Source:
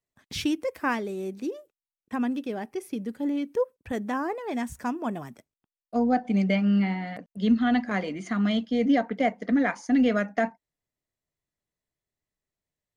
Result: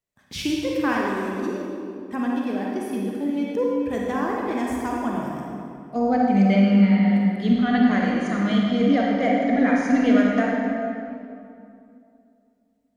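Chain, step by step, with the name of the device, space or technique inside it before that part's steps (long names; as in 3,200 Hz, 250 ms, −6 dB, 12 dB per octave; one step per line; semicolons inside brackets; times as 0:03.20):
stairwell (convolution reverb RT60 2.6 s, pre-delay 33 ms, DRR −3 dB)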